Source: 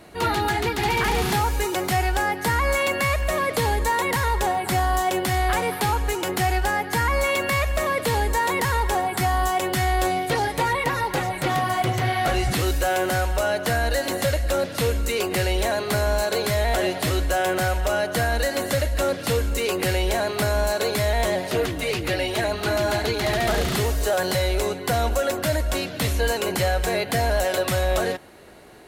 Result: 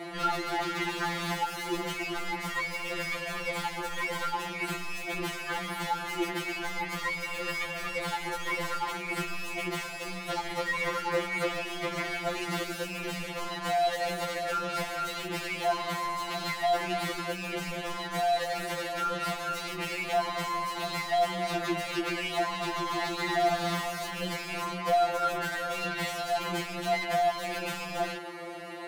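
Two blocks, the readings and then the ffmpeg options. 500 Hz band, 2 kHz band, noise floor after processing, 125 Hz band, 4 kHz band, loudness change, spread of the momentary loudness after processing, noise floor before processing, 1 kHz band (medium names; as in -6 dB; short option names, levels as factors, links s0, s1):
-9.5 dB, -7.0 dB, -38 dBFS, -16.5 dB, -6.5 dB, -8.5 dB, 6 LU, -33 dBFS, -7.0 dB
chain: -filter_complex "[0:a]asplit=2[s0][s1];[s1]highpass=f=720:p=1,volume=25.1,asoftclip=type=tanh:threshold=0.237[s2];[s0][s2]amix=inputs=2:normalize=0,lowpass=f=1700:p=1,volume=0.501,afftfilt=real='re*2.83*eq(mod(b,8),0)':imag='im*2.83*eq(mod(b,8),0)':win_size=2048:overlap=0.75,volume=0.473"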